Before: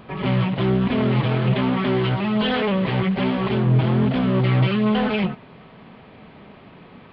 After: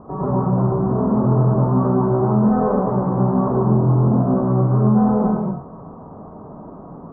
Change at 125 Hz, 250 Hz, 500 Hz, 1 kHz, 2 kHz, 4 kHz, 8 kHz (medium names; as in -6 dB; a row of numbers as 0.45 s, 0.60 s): +3.0 dB, +3.5 dB, +3.5 dB, +4.5 dB, under -15 dB, under -40 dB, no reading